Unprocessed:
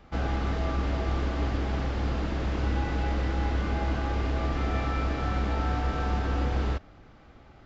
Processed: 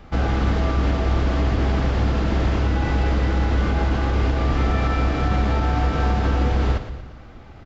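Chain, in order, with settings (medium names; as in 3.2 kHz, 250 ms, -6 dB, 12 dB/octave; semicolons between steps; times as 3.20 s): peak limiter -20.5 dBFS, peak gain reduction 4.5 dB; bass shelf 170 Hz +4 dB; feedback delay 116 ms, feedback 49%, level -11 dB; on a send at -17 dB: reverberation RT60 0.50 s, pre-delay 8 ms; on the sum: trim +7.5 dB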